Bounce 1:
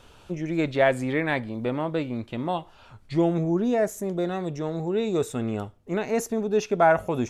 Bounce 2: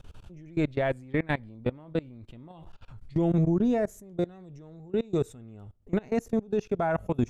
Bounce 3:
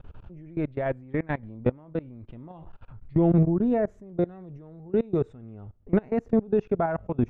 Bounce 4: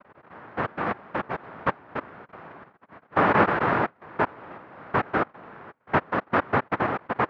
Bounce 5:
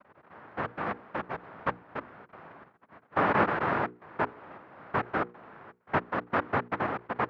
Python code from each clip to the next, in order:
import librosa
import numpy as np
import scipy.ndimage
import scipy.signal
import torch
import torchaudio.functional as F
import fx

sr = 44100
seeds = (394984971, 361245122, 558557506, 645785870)

y1 = fx.low_shelf(x, sr, hz=110.0, db=8.5)
y1 = fx.level_steps(y1, sr, step_db=24)
y1 = fx.low_shelf(y1, sr, hz=250.0, db=8.5)
y1 = y1 * librosa.db_to_amplitude(-3.0)
y2 = scipy.signal.sosfilt(scipy.signal.butter(2, 1800.0, 'lowpass', fs=sr, output='sos'), y1)
y2 = fx.tremolo_random(y2, sr, seeds[0], hz=3.5, depth_pct=55)
y2 = y2 * librosa.db_to_amplitude(5.0)
y3 = fx.noise_vocoder(y2, sr, seeds[1], bands=1)
y3 = scipy.signal.sosfilt(scipy.signal.butter(4, 1500.0, 'lowpass', fs=sr, output='sos'), y3)
y3 = y3 * librosa.db_to_amplitude(7.0)
y4 = fx.hum_notches(y3, sr, base_hz=60, count=8)
y4 = y4 * librosa.db_to_amplitude(-5.0)